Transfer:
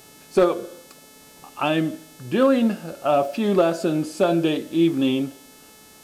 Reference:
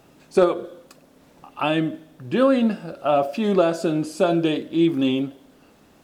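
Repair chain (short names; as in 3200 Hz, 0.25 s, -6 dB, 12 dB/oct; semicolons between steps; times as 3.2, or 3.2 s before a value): clip repair -9 dBFS; de-hum 434.2 Hz, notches 32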